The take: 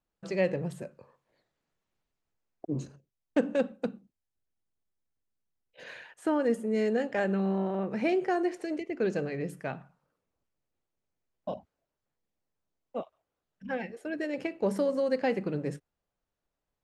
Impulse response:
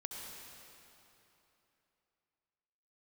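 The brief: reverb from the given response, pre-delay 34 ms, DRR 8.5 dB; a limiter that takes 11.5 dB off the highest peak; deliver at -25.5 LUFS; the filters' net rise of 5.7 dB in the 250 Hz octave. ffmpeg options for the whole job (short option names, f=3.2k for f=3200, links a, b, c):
-filter_complex "[0:a]equalizer=f=250:t=o:g=7.5,alimiter=limit=-21dB:level=0:latency=1,asplit=2[a][b];[1:a]atrim=start_sample=2205,adelay=34[c];[b][c]afir=irnorm=-1:irlink=0,volume=-7.5dB[d];[a][d]amix=inputs=2:normalize=0,volume=6dB"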